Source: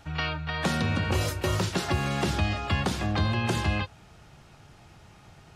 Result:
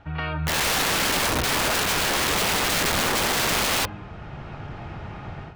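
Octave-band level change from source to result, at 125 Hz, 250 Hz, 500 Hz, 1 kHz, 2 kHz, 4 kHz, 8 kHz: −4.5, −1.0, +4.5, +6.5, +8.0, +10.5, +15.0 decibels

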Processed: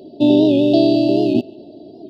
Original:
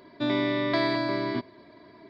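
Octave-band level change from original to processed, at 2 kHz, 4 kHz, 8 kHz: −7.0 dB, +6.5 dB, can't be measured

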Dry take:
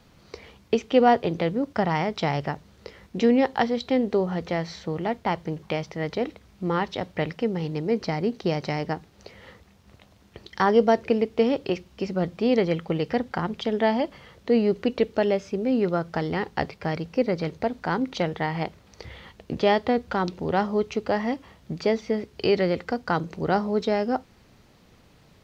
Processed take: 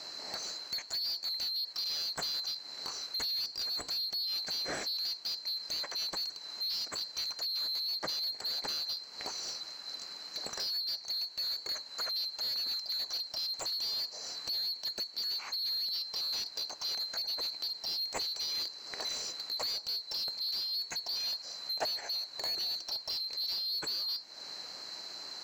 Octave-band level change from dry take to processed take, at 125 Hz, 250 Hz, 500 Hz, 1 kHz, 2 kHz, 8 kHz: below −30 dB, −32.5 dB, −27.0 dB, −20.5 dB, −14.5 dB, can't be measured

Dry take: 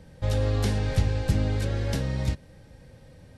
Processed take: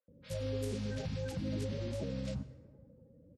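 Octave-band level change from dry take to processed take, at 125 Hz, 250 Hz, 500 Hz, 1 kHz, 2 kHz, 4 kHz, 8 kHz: −13.5, −7.5, −7.0, −16.0, −13.5, −10.5, −10.5 decibels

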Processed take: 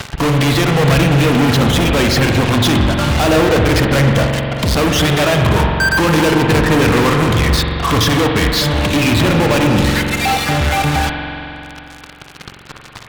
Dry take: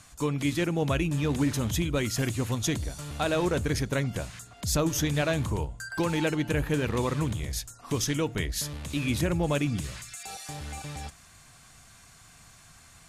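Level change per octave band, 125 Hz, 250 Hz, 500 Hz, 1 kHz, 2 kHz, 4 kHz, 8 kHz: +15.5, +15.0, +15.5, +19.5, +18.5, +18.5, +10.0 decibels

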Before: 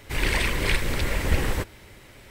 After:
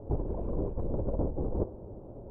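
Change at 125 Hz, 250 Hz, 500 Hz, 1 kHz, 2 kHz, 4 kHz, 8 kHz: −5.5 dB, −2.5 dB, −2.0 dB, −12.0 dB, below −40 dB, below −40 dB, below −40 dB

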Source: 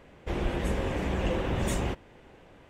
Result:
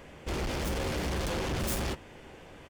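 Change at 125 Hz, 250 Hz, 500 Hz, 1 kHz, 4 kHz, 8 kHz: −3.0, −3.5, −3.0, −1.5, +3.0, +3.5 decibels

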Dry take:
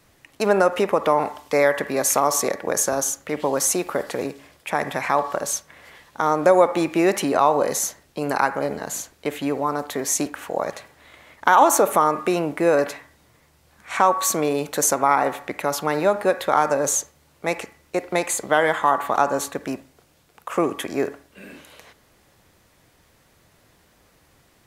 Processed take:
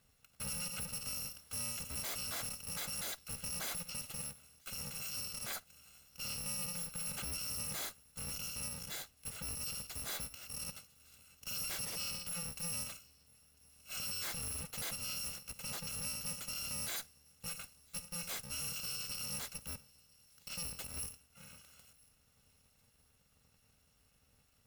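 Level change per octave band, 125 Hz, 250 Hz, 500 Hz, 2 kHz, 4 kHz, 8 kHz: −13.5, −27.0, −35.5, −20.5, −7.0, −14.5 decibels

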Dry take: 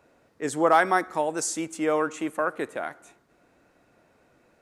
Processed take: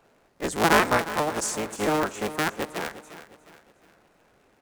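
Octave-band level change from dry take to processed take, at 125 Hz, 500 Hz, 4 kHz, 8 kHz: +7.5, −1.0, +8.5, +1.5 decibels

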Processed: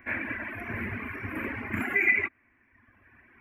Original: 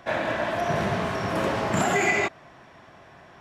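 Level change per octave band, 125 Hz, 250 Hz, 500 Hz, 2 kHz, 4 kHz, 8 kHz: −9.0 dB, −6.5 dB, −15.0 dB, +0.5 dB, below −15 dB, below −20 dB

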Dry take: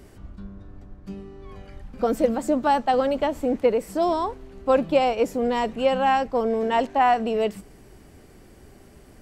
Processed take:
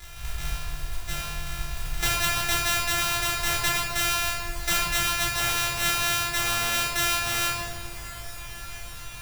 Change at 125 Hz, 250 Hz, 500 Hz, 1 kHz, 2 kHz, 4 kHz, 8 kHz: +6.0 dB, −15.0 dB, −16.0 dB, −7.5 dB, +8.0 dB, +12.0 dB, can't be measured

